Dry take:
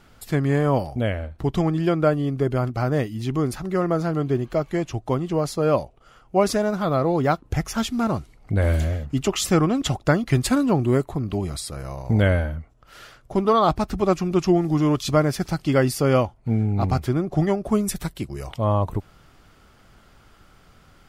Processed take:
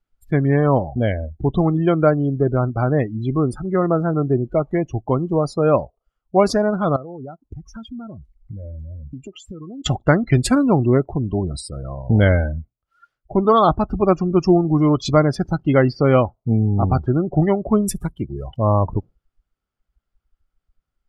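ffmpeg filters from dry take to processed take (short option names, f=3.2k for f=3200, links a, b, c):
-filter_complex "[0:a]asettb=1/sr,asplit=3[a][b][c];[a]atrim=end=6.964[d];[b]atrim=start=6.96:end=9.86,asetpts=PTS-STARTPTS,afade=t=in:d=0.004:c=qsin,afade=t=out:st=2.896:d=0.004:c=qsin,acompressor=threshold=-33dB:ratio=10:attack=3.2:release=140:knee=1:detection=peak[e];[c]atrim=start=9.856[f];[d][e]acrossfade=d=0.004:c1=hsin:c2=qsin[g];[g][f]acrossfade=d=0.004:c1=qsin:c2=hsin,asettb=1/sr,asplit=3[h][i][j];[h]atrim=end=15.514[k];[i]atrim=start=15.51:end=17.25,asetpts=PTS-STARTPTS,afade=t=in:d=0.004:c=qsin,afade=t=out:st=1.736:d=0.004:c=qsin,lowpass=5.3k[l];[j]atrim=start=17.246[m];[k][l]acrossfade=d=0.004:c1=hsin:c2=qsin[n];[n][m]acrossfade=d=0.004:c1=qsin:c2=hsin,afftdn=nr=36:nf=-31,volume=4dB"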